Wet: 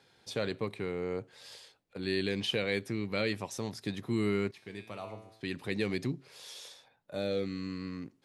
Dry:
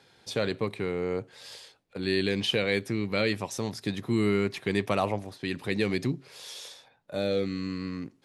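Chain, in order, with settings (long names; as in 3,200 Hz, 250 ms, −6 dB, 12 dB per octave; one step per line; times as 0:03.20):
0:04.51–0:05.41: tuned comb filter 110 Hz, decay 0.82 s, harmonics all, mix 80%
level −5 dB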